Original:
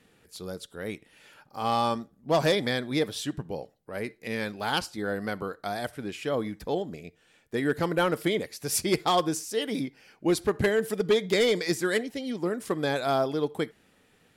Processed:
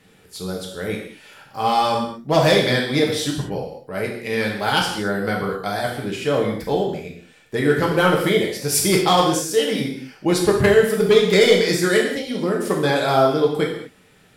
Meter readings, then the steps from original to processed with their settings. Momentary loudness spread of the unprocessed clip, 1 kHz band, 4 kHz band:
13 LU, +9.0 dB, +9.5 dB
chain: reverb whose tail is shaped and stops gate 260 ms falling, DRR −1.5 dB
level +5.5 dB

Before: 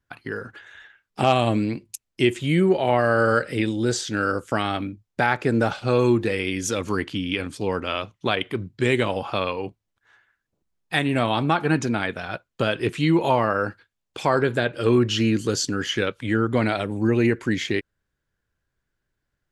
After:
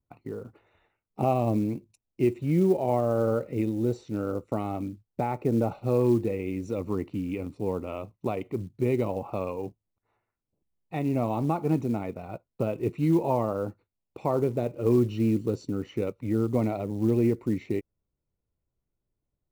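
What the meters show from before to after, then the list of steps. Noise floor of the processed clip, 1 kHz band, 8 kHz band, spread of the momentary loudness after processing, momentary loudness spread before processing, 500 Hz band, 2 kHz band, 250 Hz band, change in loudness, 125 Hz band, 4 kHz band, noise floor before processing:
−85 dBFS, −8.5 dB, below −15 dB, 10 LU, 10 LU, −4.5 dB, −20.5 dB, −3.5 dB, −5.0 dB, −3.0 dB, below −20 dB, −80 dBFS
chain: moving average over 27 samples
floating-point word with a short mantissa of 4 bits
level −3 dB

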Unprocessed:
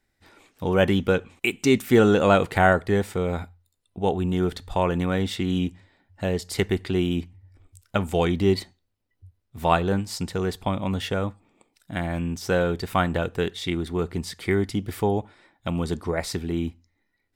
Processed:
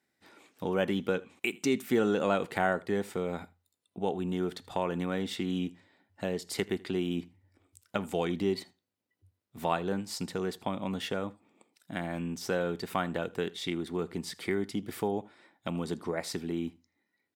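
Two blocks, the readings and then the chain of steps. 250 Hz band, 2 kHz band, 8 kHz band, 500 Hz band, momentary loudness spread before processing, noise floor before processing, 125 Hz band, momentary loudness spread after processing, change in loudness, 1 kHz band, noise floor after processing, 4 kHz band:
−8.0 dB, −8.5 dB, −5.5 dB, −8.0 dB, 10 LU, −74 dBFS, −12.0 dB, 8 LU, −8.5 dB, −9.0 dB, −82 dBFS, −7.0 dB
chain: Chebyshev high-pass filter 200 Hz, order 2
downward compressor 1.5 to 1, threshold −32 dBFS, peak gain reduction 7 dB
on a send: single-tap delay 80 ms −23.5 dB
on the sum: level −2.5 dB

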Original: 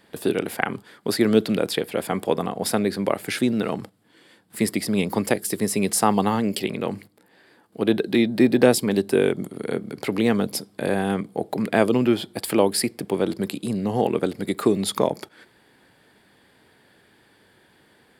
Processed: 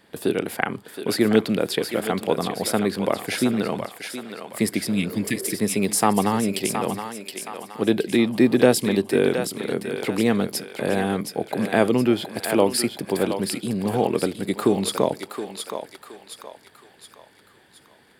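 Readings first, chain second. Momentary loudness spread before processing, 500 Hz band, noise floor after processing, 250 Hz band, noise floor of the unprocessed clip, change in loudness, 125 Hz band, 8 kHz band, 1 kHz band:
9 LU, 0.0 dB, −55 dBFS, 0.0 dB, −59 dBFS, 0.0 dB, 0.0 dB, +1.0 dB, +0.5 dB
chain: healed spectral selection 0:04.93–0:05.52, 350–1,700 Hz
feedback echo with a high-pass in the loop 720 ms, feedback 48%, high-pass 620 Hz, level −6 dB

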